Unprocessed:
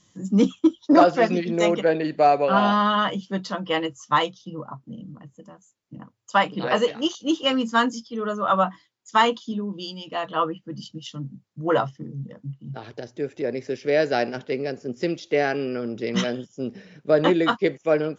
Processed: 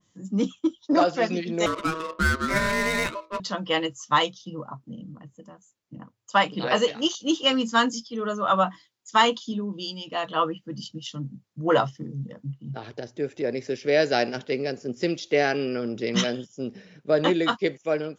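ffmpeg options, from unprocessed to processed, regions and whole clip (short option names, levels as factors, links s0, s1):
-filter_complex "[0:a]asettb=1/sr,asplit=3[s0][s1][s2];[s0]atrim=end=1.664[s3];[s1]atrim=start=1.66:end=3.4,asetpts=PTS-STARTPTS,afade=t=in:d=0.004:c=qsin,afade=t=out:st=1.736:d=0.004:c=qsin,bandreject=f=60:t=h:w=6,bandreject=f=120:t=h:w=6,bandreject=f=180:t=h:w=6,bandreject=f=240:t=h:w=6,bandreject=f=300:t=h:w=6,bandreject=f=360:t=h:w=6,bandreject=f=420:t=h:w=6,bandreject=f=480:t=h:w=6,aeval=exprs='val(0)*sin(2*PI*800*n/s)':c=same,adynamicsmooth=sensitivity=5:basefreq=1100[s4];[s2]atrim=start=3.396[s5];[s3][s4]acrossfade=d=0.004:c1=hsin:c2=qsin[s6];[s6][s5]acrossfade=d=0.004:c1=qsin:c2=hsin,dynaudnorm=f=840:g=3:m=2.66,adynamicequalizer=threshold=0.0251:dfrequency=2600:dqfactor=0.7:tfrequency=2600:tqfactor=0.7:attack=5:release=100:ratio=0.375:range=3:mode=boostabove:tftype=highshelf,volume=0.473"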